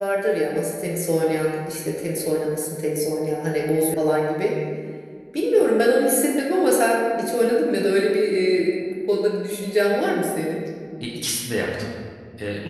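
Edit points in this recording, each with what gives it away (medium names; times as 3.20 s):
3.94 s: sound stops dead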